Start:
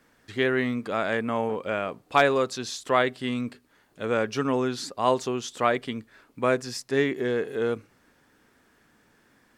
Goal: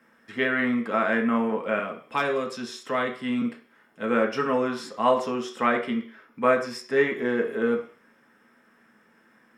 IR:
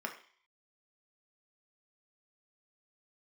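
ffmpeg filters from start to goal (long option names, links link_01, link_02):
-filter_complex "[0:a]asettb=1/sr,asplit=3[link_01][link_02][link_03];[link_01]atrim=end=1.794[link_04];[link_02]atrim=start=1.79:end=3.42,asetpts=PTS-STARTPTS,afade=type=in:duration=0.004:curve=qsin,afade=type=out:start_time=1.626:duration=0.004:curve=qsin,acrossover=split=340|3000[link_05][link_06][link_07];[link_06]acompressor=threshold=-42dB:ratio=1.5[link_08];[link_05][link_08][link_07]amix=inputs=3:normalize=0[link_09];[link_03]atrim=start=3.416[link_10];[link_04][link_09]acrossfade=duration=0.004:curve1=hsin:curve2=qsin[link_11];[link_11][link_10]acrossfade=duration=0.004:curve1=qsin:curve2=hsin,asettb=1/sr,asplit=3[link_12][link_13][link_14];[link_12]atrim=end=5.974[link_15];[link_13]atrim=start=5.97:end=6.42,asetpts=PTS-STARTPTS,afade=type=in:duration=0.004:curve=qsin,afade=type=out:start_time=0.446:duration=0.004:curve=qsin,equalizer=frequency=8300:width=7.5:gain=-14.5[link_16];[link_14]atrim=start=6.416[link_17];[link_15][link_16]acrossfade=duration=0.004:curve1=hsin:curve2=qsin[link_18];[link_18][link_17]acrossfade=duration=0.004:curve1=qsin:curve2=hsin[link_19];[1:a]atrim=start_sample=2205,afade=type=out:start_time=0.39:duration=0.01,atrim=end_sample=17640[link_20];[link_19][link_20]afir=irnorm=-1:irlink=0"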